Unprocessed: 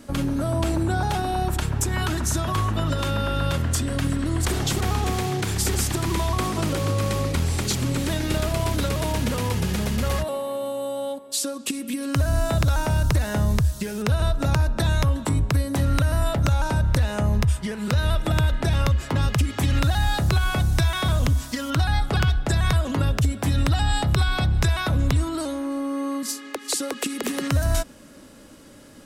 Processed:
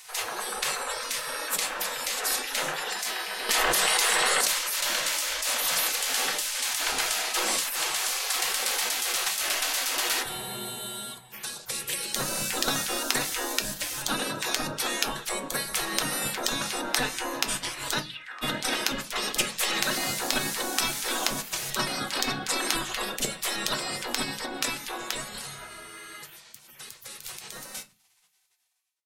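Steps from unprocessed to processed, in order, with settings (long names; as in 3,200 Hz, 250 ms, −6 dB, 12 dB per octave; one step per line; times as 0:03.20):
fade-out on the ending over 6.35 s
gate on every frequency bin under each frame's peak −25 dB weak
0:17.99–0:18.41: resonant band-pass 5,100 Hz → 1,100 Hz, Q 5.2
convolution reverb RT60 0.25 s, pre-delay 4 ms, DRR 5.5 dB
0:03.49–0:04.41: envelope flattener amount 100%
level +8 dB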